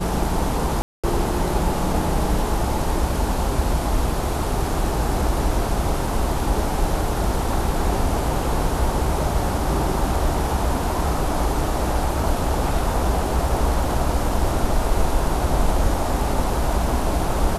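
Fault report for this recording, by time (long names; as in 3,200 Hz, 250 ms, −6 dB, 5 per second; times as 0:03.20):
0:00.82–0:01.04: drop-out 216 ms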